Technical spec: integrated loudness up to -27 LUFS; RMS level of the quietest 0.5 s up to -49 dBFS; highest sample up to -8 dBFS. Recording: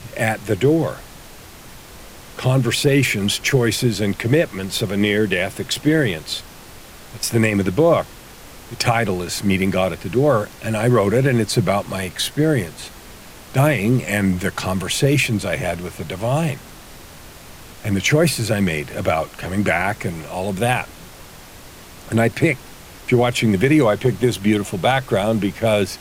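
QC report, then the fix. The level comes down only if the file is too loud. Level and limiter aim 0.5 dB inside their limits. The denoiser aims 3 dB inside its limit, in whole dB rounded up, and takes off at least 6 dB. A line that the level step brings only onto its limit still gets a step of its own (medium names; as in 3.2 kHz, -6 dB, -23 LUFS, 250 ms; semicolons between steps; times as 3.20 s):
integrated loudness -19.0 LUFS: fail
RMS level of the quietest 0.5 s -40 dBFS: fail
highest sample -5.0 dBFS: fail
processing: noise reduction 6 dB, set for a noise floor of -40 dBFS; trim -8.5 dB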